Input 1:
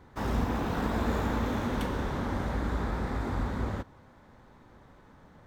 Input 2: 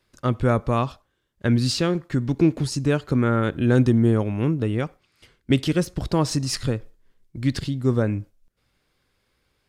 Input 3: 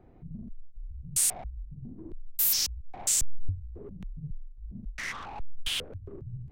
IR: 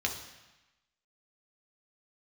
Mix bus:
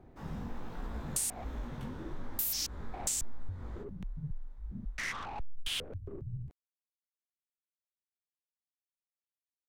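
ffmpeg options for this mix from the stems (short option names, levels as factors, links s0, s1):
-filter_complex "[0:a]flanger=delay=16.5:depth=6.2:speed=1.2,volume=0.251[s0];[2:a]volume=0.944[s1];[s0][s1]amix=inputs=2:normalize=0,acompressor=threshold=0.0282:ratio=6"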